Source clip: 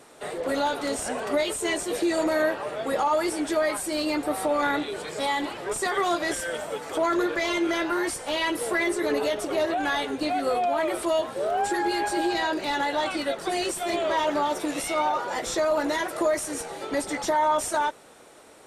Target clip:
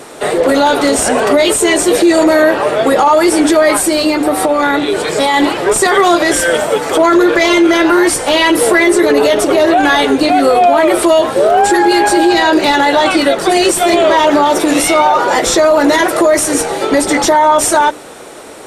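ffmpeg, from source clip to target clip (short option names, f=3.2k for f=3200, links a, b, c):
-filter_complex "[0:a]equalizer=f=330:t=o:w=1.1:g=3,bandreject=f=60:t=h:w=6,bandreject=f=120:t=h:w=6,bandreject=f=180:t=h:w=6,bandreject=f=240:t=h:w=6,bandreject=f=300:t=h:w=6,asettb=1/sr,asplit=3[a][b][c];[a]atrim=end=3.804[d];[b]atrim=start=3.8:end=5.34,asetpts=PTS-STARTPTS,afade=t=in:d=0.004:c=qsin,afade=t=out:st=1.536:d=0.004:c=qsin,acompressor=threshold=-27dB:ratio=6[e];[c]atrim=start=5.336[f];[d][e]acrossfade=d=0.004:c1=hsin:c2=qsin[g];[g][f]acrossfade=d=0.004:c1=qsin:c2=hsin,alimiter=level_in=19dB:limit=-1dB:release=50:level=0:latency=1,volume=-1dB"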